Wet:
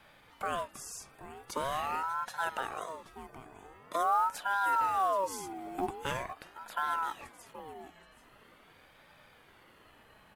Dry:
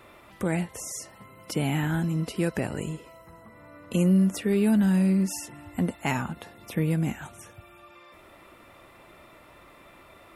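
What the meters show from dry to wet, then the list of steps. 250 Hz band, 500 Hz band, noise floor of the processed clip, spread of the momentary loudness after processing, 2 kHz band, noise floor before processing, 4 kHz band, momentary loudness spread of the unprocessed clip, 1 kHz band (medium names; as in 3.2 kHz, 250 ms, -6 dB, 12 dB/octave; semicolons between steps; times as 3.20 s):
-23.5 dB, -6.5 dB, -61 dBFS, 21 LU, -1.5 dB, -53 dBFS, -4.5 dB, 16 LU, +9.0 dB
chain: delay 777 ms -14 dB; short-mantissa float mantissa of 4-bit; ring modulator with a swept carrier 860 Hz, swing 40%, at 0.44 Hz; trim -5 dB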